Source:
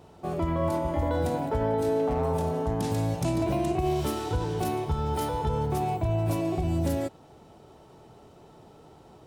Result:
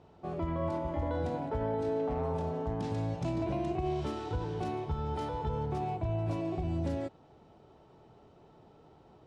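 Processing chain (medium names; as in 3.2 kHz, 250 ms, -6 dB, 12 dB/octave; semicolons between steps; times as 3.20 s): distance through air 120 m; trim -6 dB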